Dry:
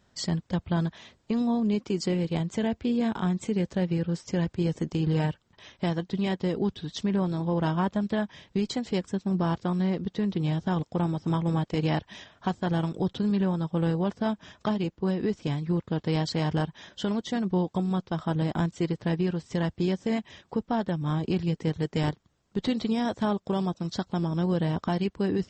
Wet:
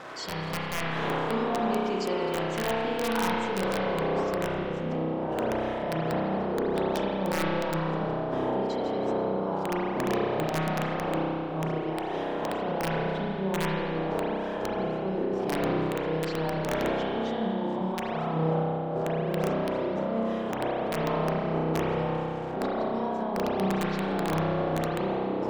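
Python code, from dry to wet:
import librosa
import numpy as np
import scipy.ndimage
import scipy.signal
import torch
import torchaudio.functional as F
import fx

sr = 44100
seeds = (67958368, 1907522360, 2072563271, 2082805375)

y = x + 0.5 * 10.0 ** (-40.0 / 20.0) * np.sign(x)
y = fx.dmg_wind(y, sr, seeds[0], corner_hz=470.0, level_db=-29.0)
y = fx.filter_sweep_bandpass(y, sr, from_hz=1400.0, to_hz=680.0, start_s=3.07, end_s=4.6, q=0.88)
y = fx.dynamic_eq(y, sr, hz=2000.0, q=2.8, threshold_db=-55.0, ratio=4.0, max_db=-6)
y = fx.over_compress(y, sr, threshold_db=-35.0, ratio=-1.0)
y = fx.hum_notches(y, sr, base_hz=50, count=3)
y = (np.mod(10.0 ** (23.0 / 20.0) * y + 1.0, 2.0) - 1.0) / 10.0 ** (23.0 / 20.0)
y = fx.rev_spring(y, sr, rt60_s=2.6, pass_ms=(31,), chirp_ms=55, drr_db=-5.5)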